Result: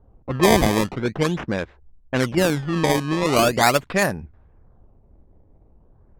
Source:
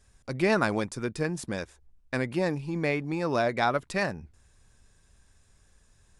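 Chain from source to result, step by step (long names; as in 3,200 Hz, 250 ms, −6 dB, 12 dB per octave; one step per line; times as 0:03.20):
sample-and-hold swept by an LFO 18×, swing 160% 0.42 Hz
low-pass that shuts in the quiet parts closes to 590 Hz, open at −22.5 dBFS
level +8.5 dB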